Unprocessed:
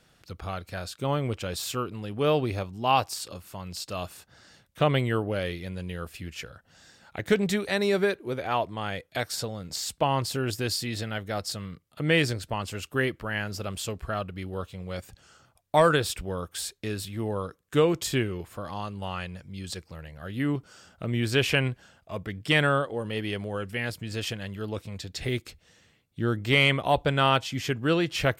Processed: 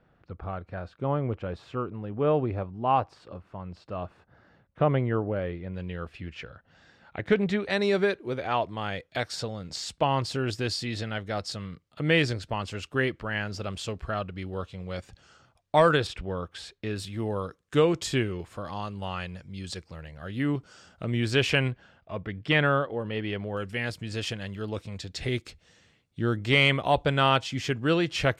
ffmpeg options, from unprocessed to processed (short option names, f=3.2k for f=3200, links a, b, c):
-af "asetnsamples=n=441:p=0,asendcmd='5.74 lowpass f 2900;7.7 lowpass f 5800;16.07 lowpass f 3400;16.96 lowpass f 7400;21.71 lowpass f 3200;23.57 lowpass f 7900',lowpass=1.4k"